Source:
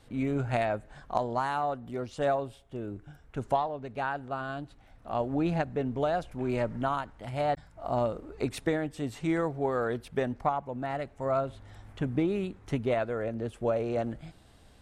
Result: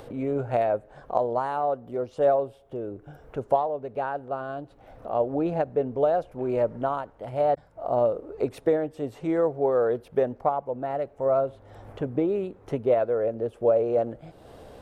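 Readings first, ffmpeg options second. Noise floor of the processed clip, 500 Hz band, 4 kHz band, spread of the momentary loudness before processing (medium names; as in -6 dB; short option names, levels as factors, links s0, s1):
-54 dBFS, +7.5 dB, no reading, 10 LU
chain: -af "bass=f=250:g=-8,treble=f=4000:g=-1,acompressor=mode=upward:threshold=0.0141:ratio=2.5,equalizer=f=125:t=o:w=1:g=5,equalizer=f=500:t=o:w=1:g=10,equalizer=f=2000:t=o:w=1:g=-5,equalizer=f=4000:t=o:w=1:g=-5,equalizer=f=8000:t=o:w=1:g=-8"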